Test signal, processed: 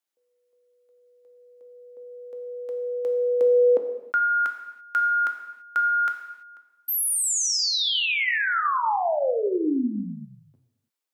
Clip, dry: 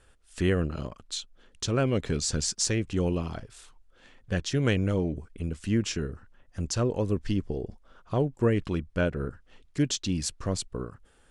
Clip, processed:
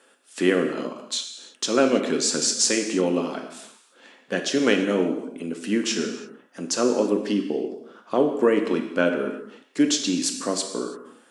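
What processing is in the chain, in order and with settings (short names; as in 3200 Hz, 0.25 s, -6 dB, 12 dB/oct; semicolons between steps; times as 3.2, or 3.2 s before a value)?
Chebyshev high-pass 220 Hz, order 4; non-linear reverb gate 0.36 s falling, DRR 4 dB; gain +7 dB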